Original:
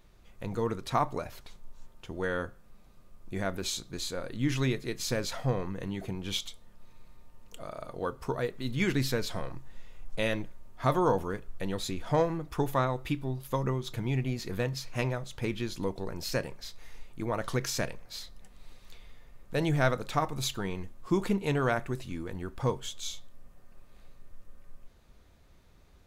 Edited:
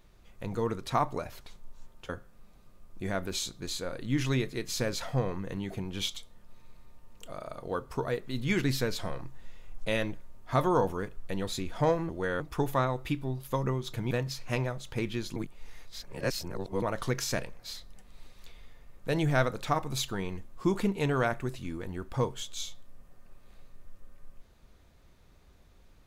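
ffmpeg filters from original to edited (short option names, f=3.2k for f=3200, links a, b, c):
-filter_complex "[0:a]asplit=7[a][b][c][d][e][f][g];[a]atrim=end=2.092[h];[b]atrim=start=2.398:end=12.402[i];[c]atrim=start=2.088:end=2.402[j];[d]atrim=start=12.398:end=14.112[k];[e]atrim=start=14.568:end=15.822[l];[f]atrim=start=15.818:end=17.282,asetpts=PTS-STARTPTS,areverse[m];[g]atrim=start=17.278[n];[h][i]acrossfade=d=0.004:c1=hsin:c2=hsin[o];[o][j]acrossfade=d=0.004:c1=hsin:c2=hsin[p];[p][k]acrossfade=d=0.004:c1=hsin:c2=hsin[q];[q][l]acrossfade=d=0.004:c1=hsin:c2=hsin[r];[r][m]acrossfade=d=0.004:c1=hsin:c2=hsin[s];[s][n]acrossfade=d=0.004:c1=hsin:c2=hsin"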